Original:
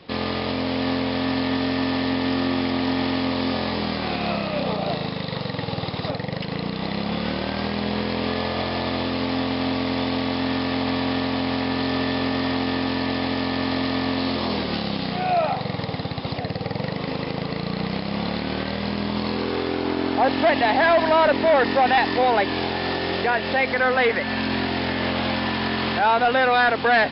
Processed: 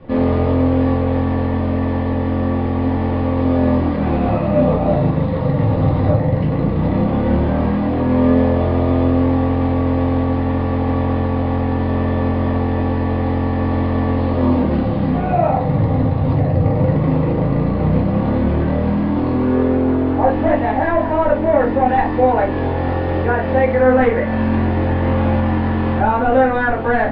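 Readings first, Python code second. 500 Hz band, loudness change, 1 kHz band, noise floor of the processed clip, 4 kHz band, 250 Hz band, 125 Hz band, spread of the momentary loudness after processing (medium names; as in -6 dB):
+6.0 dB, +6.0 dB, +2.5 dB, -19 dBFS, under -10 dB, +8.0 dB, +14.0 dB, 4 LU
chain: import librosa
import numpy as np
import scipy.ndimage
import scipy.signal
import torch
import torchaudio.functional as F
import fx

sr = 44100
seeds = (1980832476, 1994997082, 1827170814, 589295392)

y = scipy.signal.sosfilt(scipy.signal.butter(2, 2000.0, 'lowpass', fs=sr, output='sos'), x)
y = fx.tilt_eq(y, sr, slope=-3.0)
y = fx.rider(y, sr, range_db=10, speed_s=2.0)
y = fx.room_shoebox(y, sr, seeds[0], volume_m3=160.0, walls='furnished', distance_m=2.4)
y = F.gain(torch.from_numpy(y), -3.0).numpy()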